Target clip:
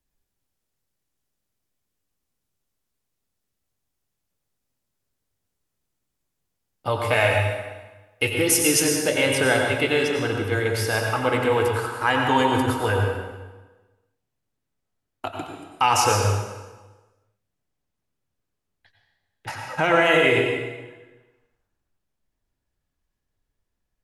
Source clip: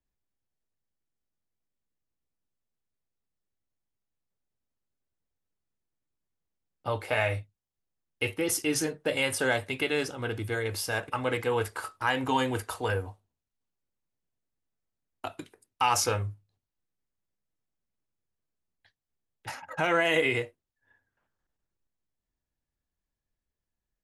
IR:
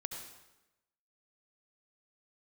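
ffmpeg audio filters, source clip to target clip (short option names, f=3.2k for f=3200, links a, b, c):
-filter_complex "[0:a]asetnsamples=n=441:p=0,asendcmd='9.09 highshelf g -4.5',highshelf=f=4.4k:g=4.5[a];[1:a]atrim=start_sample=2205,asetrate=34398,aresample=44100[b];[a][b]afir=irnorm=-1:irlink=0,volume=7.5dB"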